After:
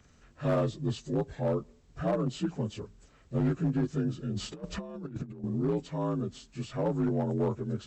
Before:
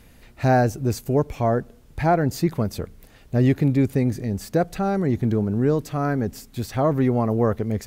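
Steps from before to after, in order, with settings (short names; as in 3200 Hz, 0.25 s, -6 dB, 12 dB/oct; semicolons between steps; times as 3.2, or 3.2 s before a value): inharmonic rescaling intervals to 84%; hard clip -14.5 dBFS, distortion -18 dB; 4.35–5.44 negative-ratio compressor -29 dBFS, ratio -0.5; gain -7.5 dB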